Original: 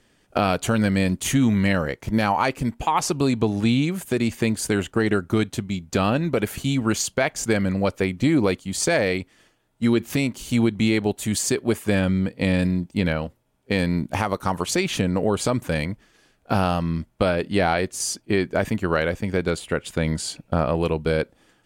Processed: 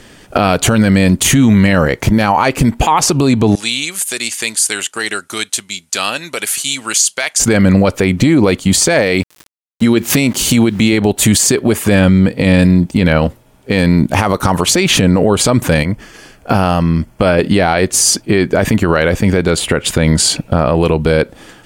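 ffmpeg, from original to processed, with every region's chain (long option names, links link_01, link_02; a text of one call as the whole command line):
ffmpeg -i in.wav -filter_complex "[0:a]asettb=1/sr,asplit=3[link_01][link_02][link_03];[link_01]atrim=end=3.554[link_04];[link_02]atrim=start=3.55:end=7.4,asetpts=PTS-STARTPTS,afade=type=in:duration=0.004:curve=qsin,afade=type=out:start_time=3.846:duration=0.004:curve=qsin,lowpass=frequency=11000:width=0.5412,lowpass=frequency=11000:width=1.3066,aderivative[link_05];[link_03]atrim=start=7.396[link_06];[link_04][link_05]acrossfade=duration=0.004:curve1=hsin:curve2=qsin[link_07];[link_07][link_06]acrossfade=duration=0.004:curve1=qsin:curve2=hsin,asettb=1/sr,asplit=3[link_08][link_09][link_10];[link_08]atrim=end=8.994[link_11];[link_09]atrim=start=8.99:end=10.93,asetpts=PTS-STARTPTS,afade=type=in:duration=0.004:curve=qsin,afade=type=out:start_time=1.936:duration=0.004:curve=qsin,highpass=frequency=95:poles=1,highshelf=frequency=2600:gain=2,aeval=exprs='val(0)*gte(abs(val(0)),0.00398)':channel_layout=same[link_12];[link_10]atrim=start=10.926[link_13];[link_11][link_12]acrossfade=duration=0.004:curve1=hsin:curve2=qsin[link_14];[link_14][link_13]acrossfade=duration=0.004:curve1=qsin:curve2=hsin,asettb=1/sr,asplit=3[link_15][link_16][link_17];[link_15]atrim=end=15.834[link_18];[link_16]atrim=start=15.83:end=17.39,asetpts=PTS-STARTPTS,afade=type=in:duration=0.004:curve=qsin,afade=type=out:start_time=1.556:duration=0.004:curve=qsin,bandreject=frequency=3800:width=6.3,acompressor=threshold=-37dB:ratio=2:attack=3.2:release=140:knee=1:detection=peak[link_19];[link_17]atrim=start=17.386[link_20];[link_18][link_19]acrossfade=duration=0.004:curve1=hsin:curve2=qsin[link_21];[link_21][link_20]acrossfade=duration=0.004:curve1=qsin:curve2=hsin,acompressor=threshold=-24dB:ratio=6,alimiter=level_in=22dB:limit=-1dB:release=50:level=0:latency=1,volume=-1dB" out.wav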